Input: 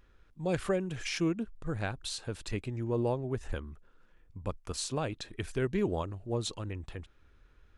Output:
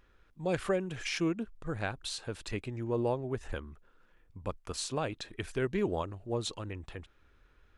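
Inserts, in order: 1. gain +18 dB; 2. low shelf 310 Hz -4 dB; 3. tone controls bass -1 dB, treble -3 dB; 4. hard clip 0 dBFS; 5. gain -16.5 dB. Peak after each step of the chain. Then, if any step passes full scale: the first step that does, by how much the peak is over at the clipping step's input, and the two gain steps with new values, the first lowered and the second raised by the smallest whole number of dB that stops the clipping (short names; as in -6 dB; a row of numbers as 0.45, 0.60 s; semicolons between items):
-0.5, -1.5, -1.5, -1.5, -18.0 dBFS; no overload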